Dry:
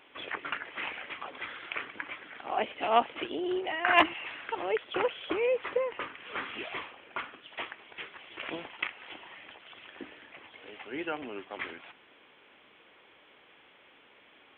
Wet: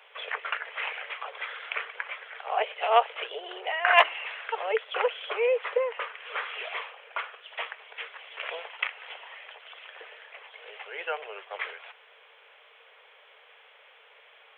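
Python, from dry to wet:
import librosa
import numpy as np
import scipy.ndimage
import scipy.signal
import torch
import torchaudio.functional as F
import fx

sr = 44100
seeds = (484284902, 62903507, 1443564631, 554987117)

y = scipy.signal.sosfilt(scipy.signal.cheby1(6, 1.0, 440.0, 'highpass', fs=sr, output='sos'), x)
y = y * librosa.db_to_amplitude(4.0)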